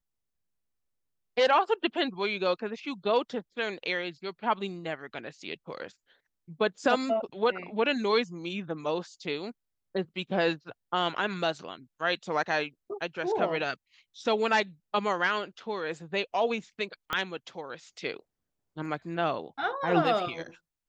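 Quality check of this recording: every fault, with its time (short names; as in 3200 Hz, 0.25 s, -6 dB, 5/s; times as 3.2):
17.13 pop -14 dBFS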